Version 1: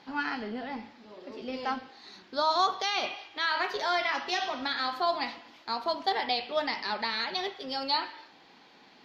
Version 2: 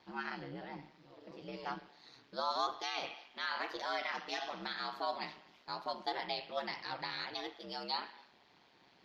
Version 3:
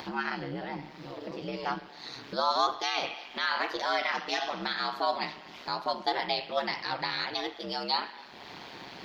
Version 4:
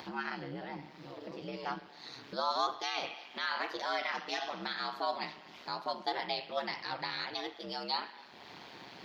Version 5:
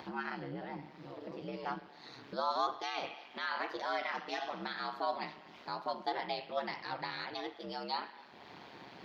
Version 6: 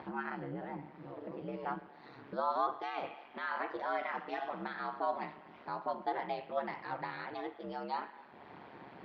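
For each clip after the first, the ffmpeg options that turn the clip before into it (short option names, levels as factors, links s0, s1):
-af "aeval=exprs='val(0)*sin(2*PI*70*n/s)':c=same,volume=0.473"
-af "acompressor=mode=upward:threshold=0.01:ratio=2.5,volume=2.66"
-af "highpass=64,volume=0.531"
-af "highshelf=f=3000:g=-9"
-af "lowpass=1900,volume=1.12"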